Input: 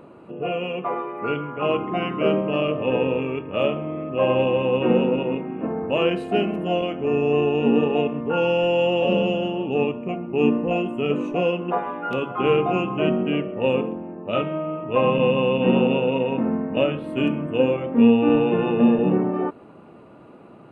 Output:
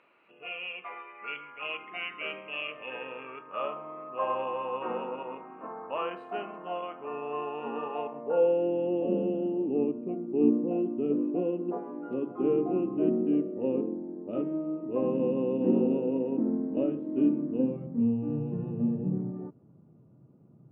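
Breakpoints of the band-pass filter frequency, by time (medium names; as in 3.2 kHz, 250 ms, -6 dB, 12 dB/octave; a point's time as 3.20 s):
band-pass filter, Q 2.9
2.62 s 2.3 kHz
3.71 s 1.1 kHz
7.95 s 1.1 kHz
8.71 s 310 Hz
17.42 s 310 Hz
18.02 s 130 Hz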